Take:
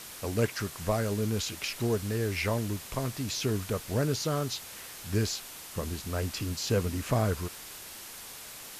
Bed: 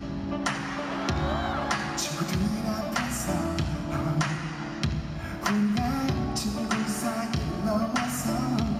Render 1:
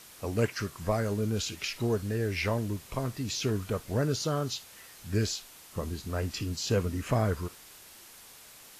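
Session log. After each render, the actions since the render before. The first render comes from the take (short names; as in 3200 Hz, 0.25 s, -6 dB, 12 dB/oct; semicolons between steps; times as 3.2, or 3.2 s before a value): noise print and reduce 7 dB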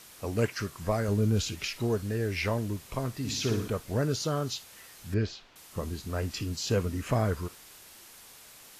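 1.08–1.68 low shelf 220 Hz +7.5 dB; 3.17–3.68 flutter echo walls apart 10.1 m, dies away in 0.58 s; 5.14–5.56 air absorption 220 m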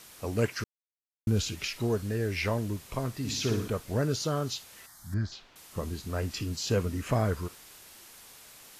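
0.64–1.27 mute; 4.86–5.32 fixed phaser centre 1100 Hz, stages 4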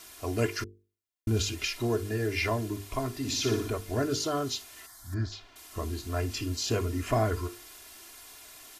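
notches 50/100/150/200/250/300/350/400/450 Hz; comb 2.9 ms, depth 79%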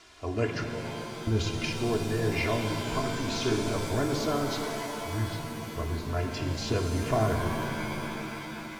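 air absorption 120 m; shimmer reverb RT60 3.5 s, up +7 st, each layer -2 dB, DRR 4.5 dB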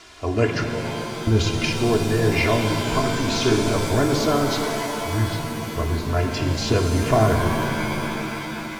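gain +8.5 dB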